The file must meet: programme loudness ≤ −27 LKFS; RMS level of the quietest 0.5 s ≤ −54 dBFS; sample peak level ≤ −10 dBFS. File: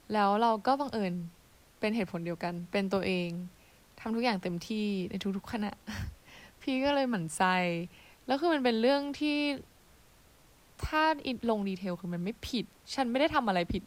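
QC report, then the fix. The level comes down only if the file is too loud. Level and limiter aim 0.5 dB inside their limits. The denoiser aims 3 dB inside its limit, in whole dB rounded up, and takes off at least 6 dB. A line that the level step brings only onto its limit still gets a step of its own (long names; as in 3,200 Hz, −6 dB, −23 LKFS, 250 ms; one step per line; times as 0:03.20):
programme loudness −31.5 LKFS: in spec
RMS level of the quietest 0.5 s −60 dBFS: in spec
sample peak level −14.0 dBFS: in spec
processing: no processing needed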